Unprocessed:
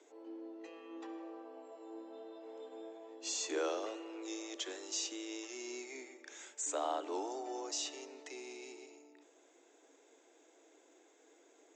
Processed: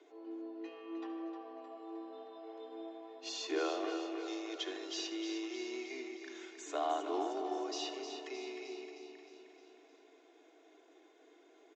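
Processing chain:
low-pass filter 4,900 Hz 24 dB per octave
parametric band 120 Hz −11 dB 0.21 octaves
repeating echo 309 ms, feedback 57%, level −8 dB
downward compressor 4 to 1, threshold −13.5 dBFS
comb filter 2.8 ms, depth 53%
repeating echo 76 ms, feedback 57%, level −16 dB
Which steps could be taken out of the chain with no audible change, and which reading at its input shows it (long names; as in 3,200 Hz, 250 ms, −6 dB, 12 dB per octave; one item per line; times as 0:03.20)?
parametric band 120 Hz: nothing at its input below 240 Hz
downward compressor, threshold −13.5 dBFS: peak of its input −24.5 dBFS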